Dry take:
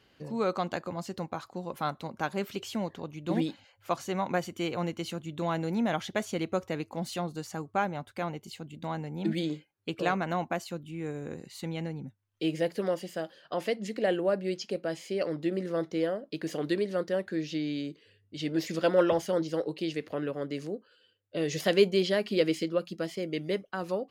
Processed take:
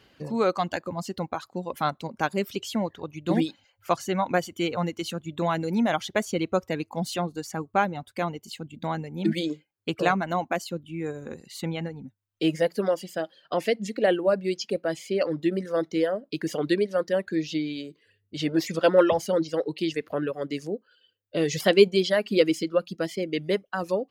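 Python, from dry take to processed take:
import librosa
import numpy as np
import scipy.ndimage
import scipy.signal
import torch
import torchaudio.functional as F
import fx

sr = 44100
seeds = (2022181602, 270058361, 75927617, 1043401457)

y = fx.dereverb_blind(x, sr, rt60_s=1.4)
y = y * librosa.db_to_amplitude(6.0)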